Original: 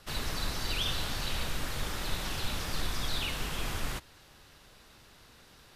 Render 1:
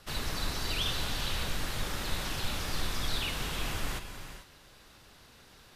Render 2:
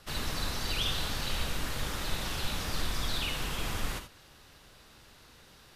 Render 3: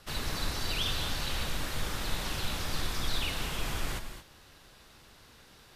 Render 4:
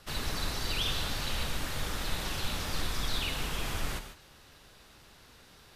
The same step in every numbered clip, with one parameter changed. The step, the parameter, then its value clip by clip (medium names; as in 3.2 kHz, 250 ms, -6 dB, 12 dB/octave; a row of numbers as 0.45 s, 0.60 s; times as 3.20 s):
gated-style reverb, gate: 470 ms, 100 ms, 250 ms, 170 ms